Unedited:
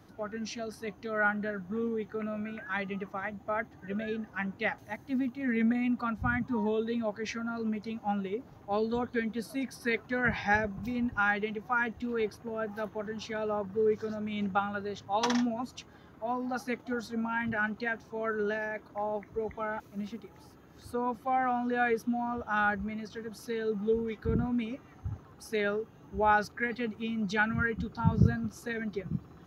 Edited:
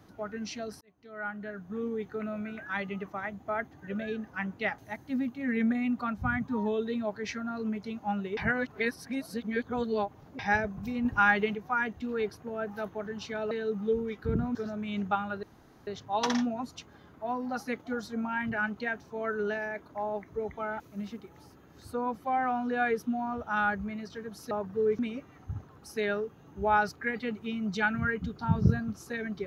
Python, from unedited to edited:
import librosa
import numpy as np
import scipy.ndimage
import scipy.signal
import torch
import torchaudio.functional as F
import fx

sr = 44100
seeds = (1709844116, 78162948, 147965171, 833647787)

y = fx.edit(x, sr, fx.fade_in_span(start_s=0.81, length_s=1.22),
    fx.reverse_span(start_s=8.37, length_s=2.02),
    fx.clip_gain(start_s=11.05, length_s=0.5, db=4.5),
    fx.swap(start_s=13.51, length_s=0.48, other_s=23.51, other_length_s=1.04),
    fx.insert_room_tone(at_s=14.87, length_s=0.44), tone=tone)